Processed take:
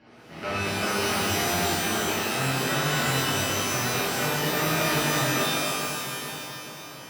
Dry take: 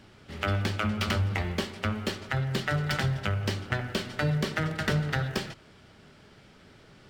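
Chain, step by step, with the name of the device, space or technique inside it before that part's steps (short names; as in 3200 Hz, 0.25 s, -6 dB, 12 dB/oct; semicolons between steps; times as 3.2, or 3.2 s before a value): analogue delay pedal into a guitar amplifier (analogue delay 0.428 s, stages 4096, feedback 63%, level -13 dB; tube stage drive 31 dB, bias 0.75; speaker cabinet 99–4600 Hz, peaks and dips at 100 Hz -7 dB, 150 Hz -5 dB, 730 Hz +4 dB, 3600 Hz -10 dB); shimmer reverb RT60 1.8 s, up +12 st, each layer -2 dB, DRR -10.5 dB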